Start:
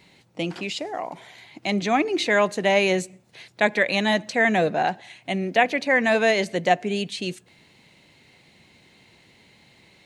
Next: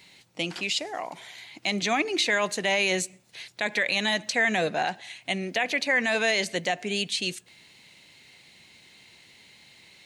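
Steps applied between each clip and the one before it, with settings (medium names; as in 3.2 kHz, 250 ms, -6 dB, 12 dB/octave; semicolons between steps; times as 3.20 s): tilt shelf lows -6 dB, about 1.5 kHz; peak limiter -14 dBFS, peak gain reduction 9.5 dB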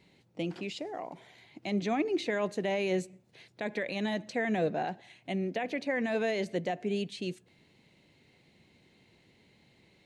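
FFT filter 410 Hz 0 dB, 1.1 kHz -10 dB, 8.6 kHz -19 dB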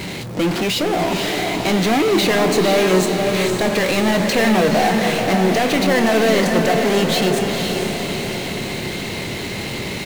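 power-law waveshaper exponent 0.35; doubling 27 ms -12 dB; echo that smears into a reverb 500 ms, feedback 58%, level -4 dB; trim +7 dB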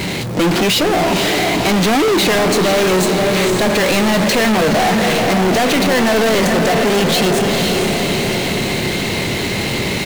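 overload inside the chain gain 19 dB; trim +7 dB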